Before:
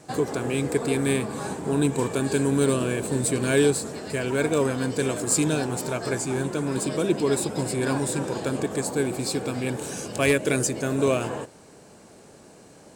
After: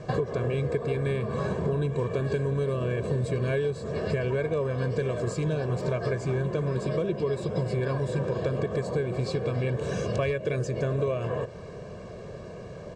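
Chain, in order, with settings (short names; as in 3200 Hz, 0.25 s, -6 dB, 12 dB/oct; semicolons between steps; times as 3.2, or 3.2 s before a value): low shelf 410 Hz +8.5 dB; comb 1.8 ms, depth 78%; compressor 10:1, threshold -28 dBFS, peak gain reduction 18 dB; air absorption 170 m; gain +4 dB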